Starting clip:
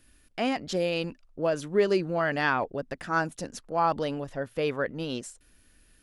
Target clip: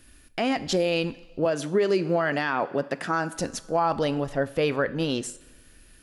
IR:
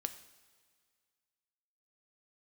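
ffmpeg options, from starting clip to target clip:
-filter_complex "[0:a]asettb=1/sr,asplit=3[link_01][link_02][link_03];[link_01]atrim=end=1.454[link_04];[link_02]atrim=start=1.45:end=3.34,asetpts=PTS-STARTPTS,afade=type=in:duration=0.004:curve=qsin,afade=type=out:start_time=1.886:duration=0.004:curve=qsin,highpass=frequency=140:width=0.5412,highpass=frequency=140:width=1.3066[link_05];[link_03]atrim=start=3.336[link_06];[link_04][link_05]acrossfade=duration=0.004:curve1=hsin:curve2=qsin[link_07];[link_07][link_06]acrossfade=duration=0.004:curve1=qsin:curve2=hsin,asplit=2[link_08][link_09];[1:a]atrim=start_sample=2205,asetrate=61740,aresample=44100[link_10];[link_09][link_10]afir=irnorm=-1:irlink=0,volume=6dB[link_11];[link_08][link_11]amix=inputs=2:normalize=0,alimiter=limit=-14dB:level=0:latency=1:release=152"

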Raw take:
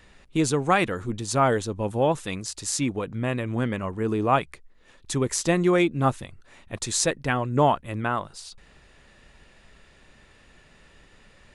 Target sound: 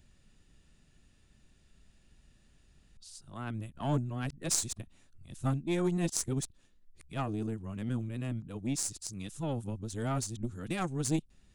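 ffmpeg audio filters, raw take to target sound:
ffmpeg -i in.wav -af "areverse,equalizer=frequency=500:width_type=o:width=1:gain=-11,equalizer=frequency=1000:width_type=o:width=1:gain=-10,equalizer=frequency=2000:width_type=o:width=1:gain=-11,equalizer=frequency=4000:width_type=o:width=1:gain=-4,aeval=exprs='0.422*(cos(1*acos(clip(val(0)/0.422,-1,1)))-cos(1*PI/2))+0.0188*(cos(6*acos(clip(val(0)/0.422,-1,1)))-cos(6*PI/2))+0.0299*(cos(7*acos(clip(val(0)/0.422,-1,1)))-cos(7*PI/2))':channel_layout=same" out.wav

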